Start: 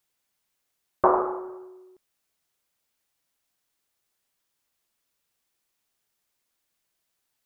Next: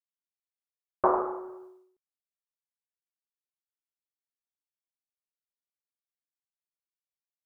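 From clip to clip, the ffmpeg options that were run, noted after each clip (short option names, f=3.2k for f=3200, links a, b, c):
-af "agate=range=-33dB:threshold=-44dB:ratio=3:detection=peak,volume=-4dB"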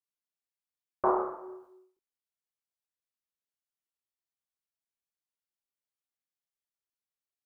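-af "flanger=delay=22.5:depth=7:speed=0.46"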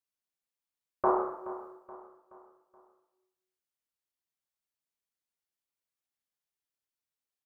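-af "aecho=1:1:425|850|1275|1700:0.168|0.0755|0.034|0.0153"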